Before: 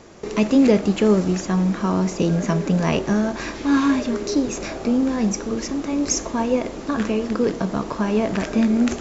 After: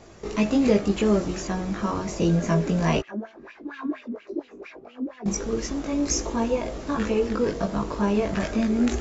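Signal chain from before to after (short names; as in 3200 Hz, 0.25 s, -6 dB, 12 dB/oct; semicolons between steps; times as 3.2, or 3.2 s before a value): bell 61 Hz +11 dB 0.25 oct; 3–5.26 wah 4.3 Hz 230–2900 Hz, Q 5.4; chorus voices 6, 0.29 Hz, delay 19 ms, depth 1.6 ms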